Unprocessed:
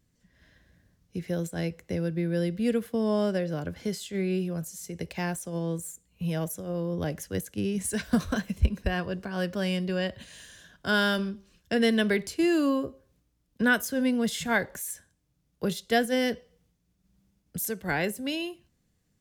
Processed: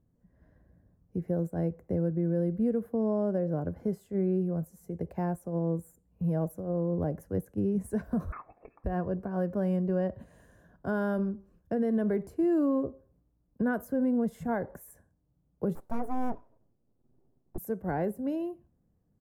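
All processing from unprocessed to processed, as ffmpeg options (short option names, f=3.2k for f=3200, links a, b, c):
-filter_complex "[0:a]asettb=1/sr,asplit=3[a][b][c];[a]atrim=end=8.324[d];[b]atrim=start=8.32:end=8.84,asetpts=PTS-STARTPTS,afade=t=in:d=0.004:c=qsin,afade=t=out:st=0.516:d=0.004:c=qsin,highpass=730,lowpass=f=2.4k:t=q:w=0.5098,lowpass=f=2.4k:t=q:w=0.6013,lowpass=f=2.4k:t=q:w=0.9,lowpass=f=2.4k:t=q:w=2.563,afreqshift=-2800[e];[c]atrim=start=8.836[f];[d][e]acrossfade=d=0.004:c1=hsin:c2=qsin[g];[g][f]acrossfade=d=0.004:c1=qsin:c2=hsin,asettb=1/sr,asplit=3[h][i][j];[h]atrim=end=15.754[k];[i]atrim=start=15.75:end=17.58,asetpts=PTS-STARTPTS,afade=t=in:d=0.004:c=qsin,afade=t=out:st=1.826:d=0.004:c=qsin,highshelf=f=7.8k:g=-5.5,aeval=exprs='abs(val(0))':c=same[l];[j]atrim=start=17.576[m];[k][l]acrossfade=d=0.004:c1=hsin:c2=qsin[n];[n][m]acrossfade=d=0.004:c1=qsin:c2=hsin,firequalizer=gain_entry='entry(730,0);entry(2200,-21);entry(3300,-30);entry(13000,-5)':delay=0.05:min_phase=1,alimiter=limit=-21.5dB:level=0:latency=1:release=101,highshelf=f=10k:g=-12,volume=1dB"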